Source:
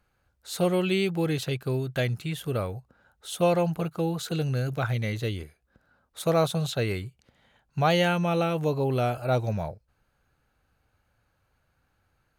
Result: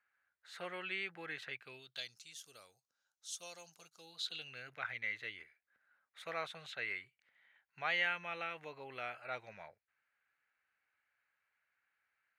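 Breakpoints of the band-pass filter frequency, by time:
band-pass filter, Q 3.5
1.51 s 1.8 kHz
2.20 s 6 kHz
3.94 s 6 kHz
4.68 s 2 kHz

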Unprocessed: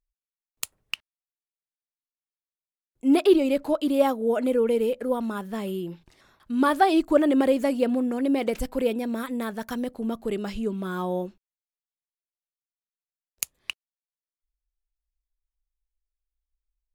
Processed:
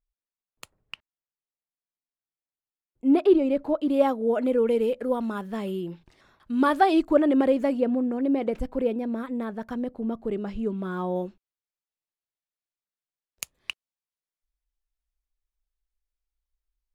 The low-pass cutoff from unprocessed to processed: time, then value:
low-pass 6 dB/octave
1.1 kHz
from 3.90 s 2.5 kHz
from 4.58 s 4.3 kHz
from 7.09 s 2 kHz
from 7.80 s 1 kHz
from 10.59 s 1.8 kHz
from 11.16 s 4.3 kHz
from 13.57 s 7 kHz

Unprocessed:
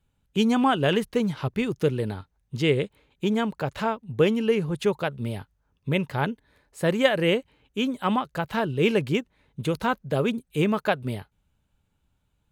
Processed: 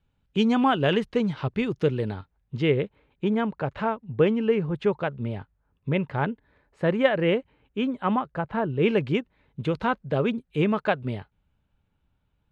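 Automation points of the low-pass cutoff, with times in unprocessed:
2.04 s 4.2 kHz
2.84 s 2.3 kHz
7.90 s 2.3 kHz
8.60 s 1.4 kHz
8.98 s 3.2 kHz

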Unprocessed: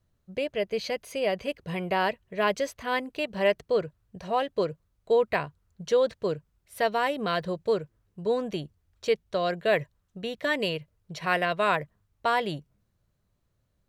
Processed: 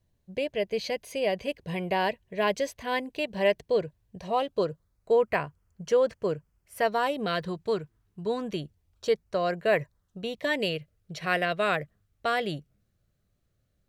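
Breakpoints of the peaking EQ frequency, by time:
peaking EQ -14 dB 0.23 oct
4.17 s 1.3 kHz
5.17 s 3.8 kHz
6.84 s 3.8 kHz
7.51 s 540 Hz
8.39 s 540 Hz
9.26 s 3.5 kHz
9.79 s 3.5 kHz
10.72 s 960 Hz

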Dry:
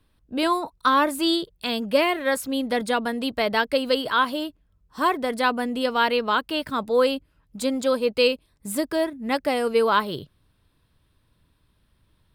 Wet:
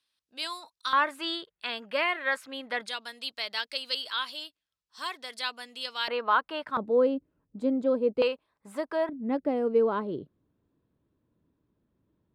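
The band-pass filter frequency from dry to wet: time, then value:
band-pass filter, Q 1.2
5.1 kHz
from 0.93 s 1.7 kHz
from 2.88 s 4.7 kHz
from 6.08 s 1.1 kHz
from 6.77 s 330 Hz
from 8.22 s 1 kHz
from 9.09 s 310 Hz

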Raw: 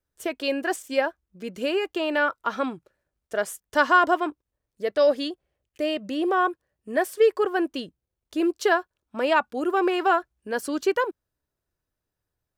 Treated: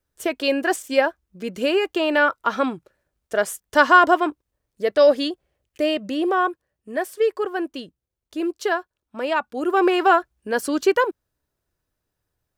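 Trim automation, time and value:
5.84 s +5 dB
6.98 s -1.5 dB
9.42 s -1.5 dB
9.82 s +5 dB

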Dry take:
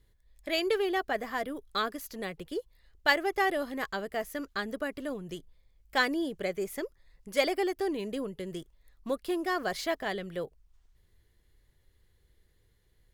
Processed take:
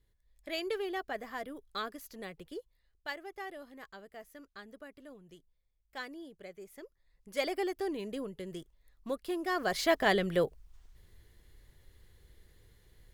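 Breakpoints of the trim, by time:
2.49 s -7 dB
3.13 s -15.5 dB
6.67 s -15.5 dB
7.58 s -4 dB
9.40 s -4 dB
10.09 s +7 dB

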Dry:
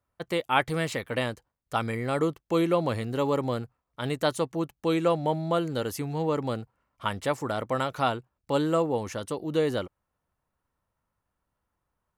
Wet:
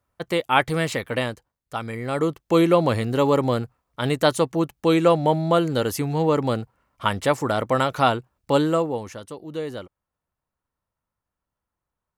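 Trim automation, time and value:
1.07 s +5 dB
1.80 s -2 dB
2.53 s +7 dB
8.53 s +7 dB
9.26 s -4.5 dB

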